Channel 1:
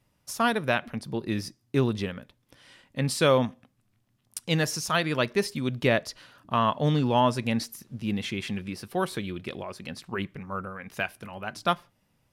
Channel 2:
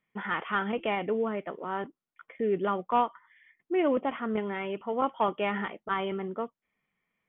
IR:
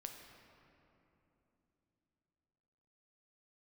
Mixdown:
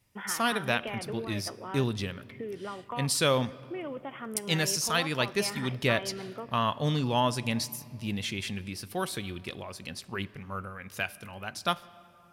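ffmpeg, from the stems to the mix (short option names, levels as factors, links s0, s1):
-filter_complex "[0:a]equalizer=f=86:t=o:w=0.85:g=6.5,volume=0.447,asplit=2[s0][s1];[s1]volume=0.398[s2];[1:a]acompressor=threshold=0.0282:ratio=6,volume=0.501,asplit=2[s3][s4];[s4]volume=0.355[s5];[2:a]atrim=start_sample=2205[s6];[s2][s5]amix=inputs=2:normalize=0[s7];[s7][s6]afir=irnorm=-1:irlink=0[s8];[s0][s3][s8]amix=inputs=3:normalize=0,highshelf=f=2600:g=10"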